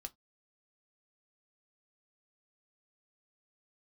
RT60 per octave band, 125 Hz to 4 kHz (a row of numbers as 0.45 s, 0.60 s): 0.20 s, 0.20 s, 0.15 s, 0.15 s, 0.15 s, no reading